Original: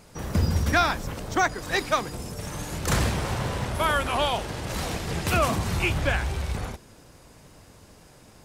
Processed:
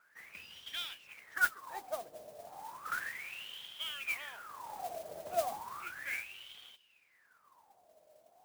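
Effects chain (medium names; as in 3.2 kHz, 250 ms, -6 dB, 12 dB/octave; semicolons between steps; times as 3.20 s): dynamic bell 840 Hz, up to -4 dB, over -35 dBFS, Q 1.2; wah-wah 0.34 Hz 620–3200 Hz, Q 19; modulation noise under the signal 12 dB; trim +5 dB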